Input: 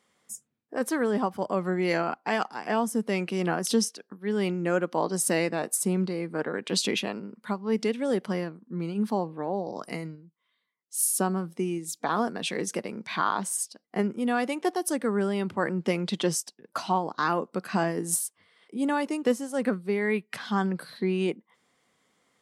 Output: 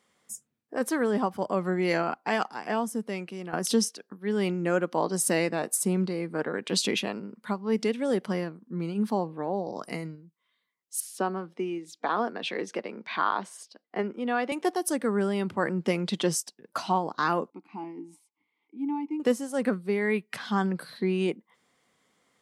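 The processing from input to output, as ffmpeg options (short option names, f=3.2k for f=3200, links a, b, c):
-filter_complex "[0:a]asettb=1/sr,asplit=3[a][b][c];[a]atrim=end=11.004[d];[b]atrim=start=11:end=14.52,asetpts=PTS-STARTPTS,afade=t=in:d=0.004:c=qsin,afade=t=out:st=3.516:d=0.004:c=qsin,acrossover=split=230 4700:gain=0.126 1 0.0891[e][f][g];[e][f][g]amix=inputs=3:normalize=0[h];[c]atrim=start=14.516[i];[d][h]acrossfade=d=0.004:c1=hsin:c2=qsin[j];[j][i]acrossfade=d=0.004:c1=qsin:c2=hsin,asettb=1/sr,asplit=3[k][l][m];[k]atrim=end=17.504[n];[l]atrim=start=17.5:end=19.2,asetpts=PTS-STARTPTS,afade=t=in:d=0.004:c=qsin,afade=t=out:st=1.696:d=0.004:c=qsin,asplit=3[o][p][q];[o]bandpass=f=300:t=q:w=8,volume=0dB[r];[p]bandpass=f=870:t=q:w=8,volume=-6dB[s];[q]bandpass=f=2.24k:t=q:w=8,volume=-9dB[t];[r][s][t]amix=inputs=3:normalize=0[u];[m]atrim=start=19.196[v];[n][u]acrossfade=d=0.004:c1=hsin:c2=qsin[w];[w][v]acrossfade=d=0.004:c1=qsin:c2=hsin,asplit=2[x][y];[x]atrim=end=3.53,asetpts=PTS-STARTPTS,afade=t=out:st=2.46:d=1.07:silence=0.223872[z];[y]atrim=start=3.53,asetpts=PTS-STARTPTS,afade=t=in:d=0.004:c=hsin:silence=0.223872[aa];[z][aa]concat=n=2:v=0:a=1"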